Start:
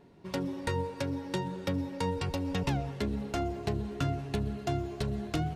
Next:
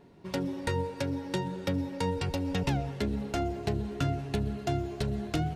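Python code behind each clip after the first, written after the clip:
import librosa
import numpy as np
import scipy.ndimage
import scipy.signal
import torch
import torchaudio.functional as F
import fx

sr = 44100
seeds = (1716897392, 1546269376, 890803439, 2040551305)

y = fx.dynamic_eq(x, sr, hz=1100.0, q=6.6, threshold_db=-58.0, ratio=4.0, max_db=-6)
y = F.gain(torch.from_numpy(y), 1.5).numpy()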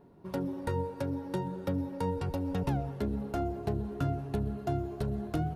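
y = fx.band_shelf(x, sr, hz=3900.0, db=-10.0, octaves=2.5)
y = F.gain(torch.from_numpy(y), -1.5).numpy()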